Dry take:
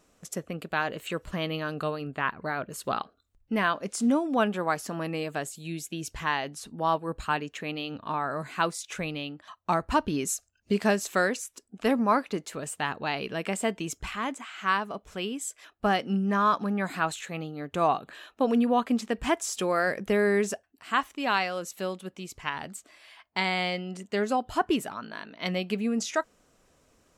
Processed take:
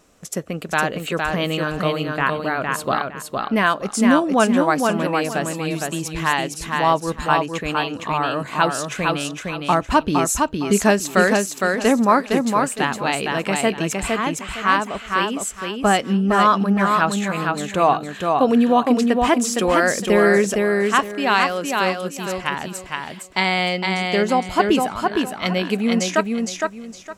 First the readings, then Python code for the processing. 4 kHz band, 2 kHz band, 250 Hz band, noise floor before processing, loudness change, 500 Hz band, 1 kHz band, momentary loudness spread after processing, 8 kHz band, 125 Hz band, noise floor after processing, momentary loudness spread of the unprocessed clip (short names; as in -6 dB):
+9.5 dB, +9.5 dB, +9.5 dB, -69 dBFS, +9.5 dB, +9.5 dB, +9.5 dB, 8 LU, +9.5 dB, +9.5 dB, -37 dBFS, 11 LU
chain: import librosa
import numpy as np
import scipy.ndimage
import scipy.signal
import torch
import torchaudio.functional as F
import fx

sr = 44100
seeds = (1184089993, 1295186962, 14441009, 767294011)

y = fx.echo_feedback(x, sr, ms=461, feedback_pct=25, wet_db=-3.5)
y = y * 10.0 ** (8.0 / 20.0)